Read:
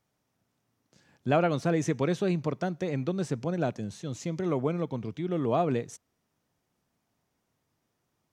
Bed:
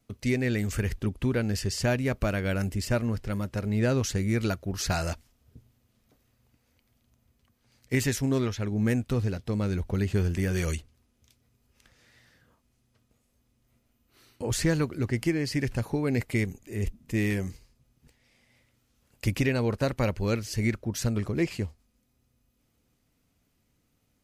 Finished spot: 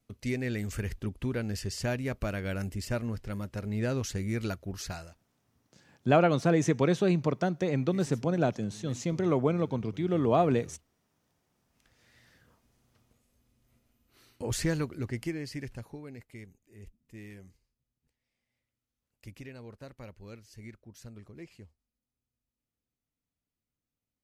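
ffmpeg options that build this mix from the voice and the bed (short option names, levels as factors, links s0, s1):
-filter_complex "[0:a]adelay=4800,volume=1.26[s0];[1:a]volume=7.08,afade=t=out:st=4.7:d=0.41:silence=0.133352,afade=t=in:st=11.51:d=0.85:silence=0.0749894,afade=t=out:st=13.74:d=2.42:silence=0.105925[s1];[s0][s1]amix=inputs=2:normalize=0"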